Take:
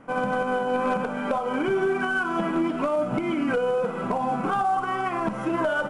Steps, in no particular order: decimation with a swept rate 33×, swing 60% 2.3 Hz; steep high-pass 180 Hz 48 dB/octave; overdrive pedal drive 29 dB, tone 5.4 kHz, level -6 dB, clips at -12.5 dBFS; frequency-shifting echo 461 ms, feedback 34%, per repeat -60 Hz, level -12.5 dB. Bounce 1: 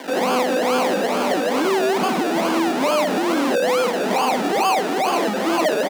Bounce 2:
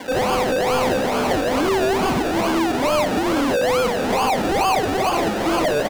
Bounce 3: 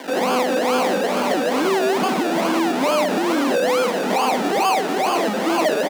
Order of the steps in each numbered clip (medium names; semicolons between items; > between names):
frequency-shifting echo > decimation with a swept rate > overdrive pedal > steep high-pass; frequency-shifting echo > steep high-pass > decimation with a swept rate > overdrive pedal; decimation with a swept rate > overdrive pedal > frequency-shifting echo > steep high-pass